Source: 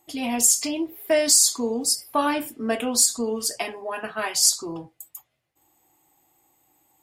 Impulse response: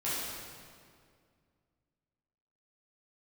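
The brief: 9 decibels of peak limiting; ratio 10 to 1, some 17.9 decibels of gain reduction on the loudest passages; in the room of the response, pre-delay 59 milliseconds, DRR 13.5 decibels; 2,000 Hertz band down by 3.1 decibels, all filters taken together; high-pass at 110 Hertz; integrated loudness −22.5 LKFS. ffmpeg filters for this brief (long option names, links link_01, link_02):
-filter_complex "[0:a]highpass=110,equalizer=frequency=2000:width_type=o:gain=-4,acompressor=threshold=-32dB:ratio=10,alimiter=level_in=5dB:limit=-24dB:level=0:latency=1,volume=-5dB,asplit=2[link_01][link_02];[1:a]atrim=start_sample=2205,adelay=59[link_03];[link_02][link_03]afir=irnorm=-1:irlink=0,volume=-20.5dB[link_04];[link_01][link_04]amix=inputs=2:normalize=0,volume=15.5dB"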